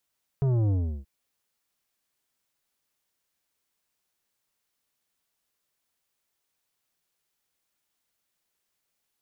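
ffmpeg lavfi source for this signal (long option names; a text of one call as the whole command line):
ffmpeg -f lavfi -i "aevalsrc='0.0794*clip((0.63-t)/0.35,0,1)*tanh(3.35*sin(2*PI*140*0.63/log(65/140)*(exp(log(65/140)*t/0.63)-1)))/tanh(3.35)':duration=0.63:sample_rate=44100" out.wav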